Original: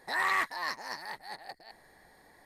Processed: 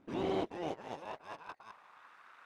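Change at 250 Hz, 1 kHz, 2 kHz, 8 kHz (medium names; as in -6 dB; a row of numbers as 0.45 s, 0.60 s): +13.0 dB, -8.5 dB, -19.0 dB, -14.0 dB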